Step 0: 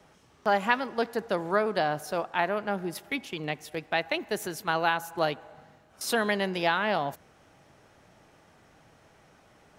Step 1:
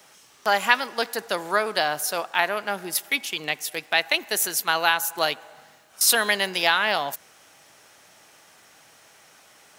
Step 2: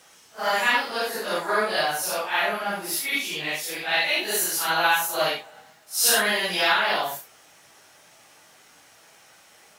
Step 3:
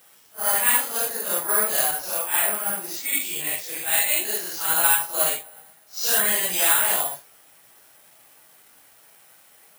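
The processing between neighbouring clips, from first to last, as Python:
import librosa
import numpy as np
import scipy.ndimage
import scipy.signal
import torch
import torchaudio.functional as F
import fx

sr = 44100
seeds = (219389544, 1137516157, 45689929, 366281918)

y1 = fx.tilt_eq(x, sr, slope=4.0)
y1 = F.gain(torch.from_numpy(y1), 4.0).numpy()
y2 = fx.phase_scramble(y1, sr, seeds[0], window_ms=200)
y3 = (np.kron(scipy.signal.resample_poly(y2, 1, 4), np.eye(4)[0]) * 4)[:len(y2)]
y3 = F.gain(torch.from_numpy(y3), -4.0).numpy()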